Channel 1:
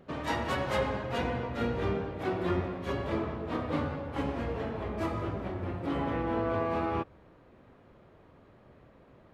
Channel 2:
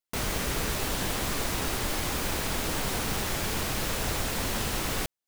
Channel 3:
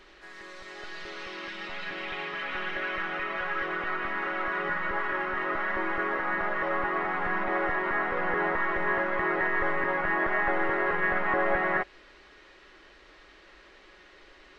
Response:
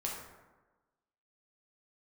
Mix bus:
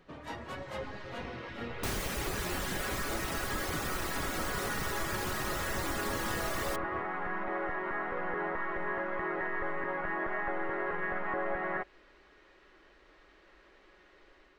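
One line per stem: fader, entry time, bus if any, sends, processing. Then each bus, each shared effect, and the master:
-9.5 dB, 0.00 s, no send, reverb removal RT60 0.58 s
-2.5 dB, 1.70 s, no send, reverb removal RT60 1.8 s
-8.5 dB, 0.00 s, no send, peaking EQ 4.4 kHz -6 dB 2.5 oct; level rider gain up to 4 dB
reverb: none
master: compression 2.5:1, threshold -30 dBFS, peak gain reduction 3.5 dB

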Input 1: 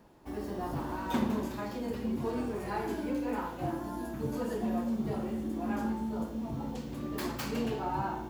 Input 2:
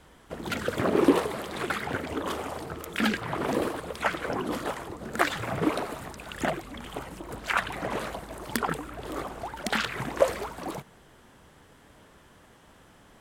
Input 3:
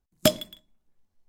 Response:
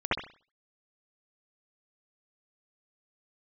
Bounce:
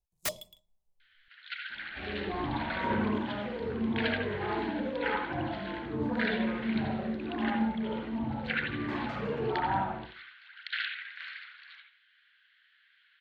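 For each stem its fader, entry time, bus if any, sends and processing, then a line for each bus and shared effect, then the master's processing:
+0.5 dB, 1.70 s, send -7.5 dB, low-pass 2 kHz 12 dB/octave; bass shelf 82 Hz -6 dB; Shepard-style flanger falling 1.4 Hz
-5.5 dB, 1.00 s, send -12.5 dB, Chebyshev band-pass 1.5–4.3 kHz, order 4
-7.5 dB, 0.00 s, no send, static phaser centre 660 Hz, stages 4; integer overflow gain 17 dB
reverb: on, pre-delay 62 ms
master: none

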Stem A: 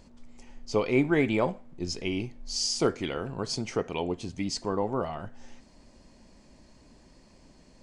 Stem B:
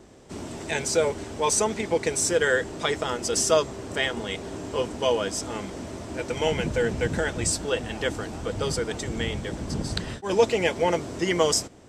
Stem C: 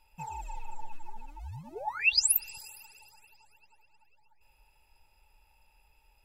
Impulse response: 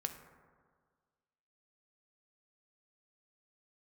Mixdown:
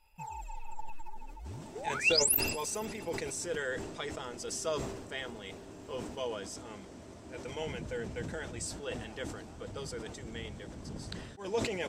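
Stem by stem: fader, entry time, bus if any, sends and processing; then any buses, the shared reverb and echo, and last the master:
mute
-14.0 dB, 1.15 s, no send, none
-3.0 dB, 0.00 s, no send, none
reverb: none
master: decay stretcher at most 47 dB/s

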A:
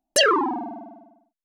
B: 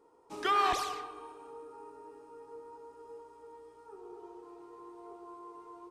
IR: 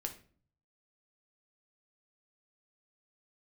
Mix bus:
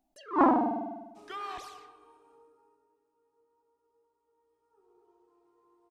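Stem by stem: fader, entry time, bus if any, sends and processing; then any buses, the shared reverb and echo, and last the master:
+1.5 dB, 0.00 s, send -9 dB, attacks held to a fixed rise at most 220 dB/s
2.35 s -11.5 dB -> 3.01 s -24 dB -> 4.25 s -24 dB -> 4.90 s -17 dB, 0.85 s, no send, none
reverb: on, RT60 0.45 s, pre-delay 7 ms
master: loudspeaker Doppler distortion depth 0.24 ms

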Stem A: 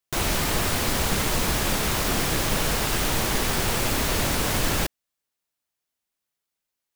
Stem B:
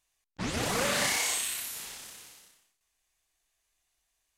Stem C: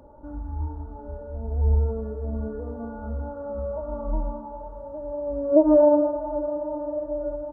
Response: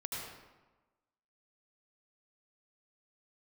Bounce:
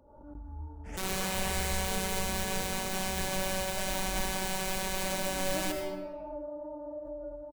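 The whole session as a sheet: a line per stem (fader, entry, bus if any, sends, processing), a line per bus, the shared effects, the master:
-5.0 dB, 0.85 s, bus A, send -5 dB, robot voice 189 Hz
-5.0 dB, 0.45 s, bus A, send -13.5 dB, stepped phaser 3.7 Hz 560–1800 Hz
-11.0 dB, 0.00 s, no bus, no send, gate with hold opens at -27 dBFS; compression, threshold -25 dBFS, peak gain reduction 13.5 dB
bus A: 0.0 dB, gate -29 dBFS, range -25 dB; peak limiter -18.5 dBFS, peak gain reduction 9.5 dB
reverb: on, RT60 1.2 s, pre-delay 71 ms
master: swell ahead of each attack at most 58 dB/s

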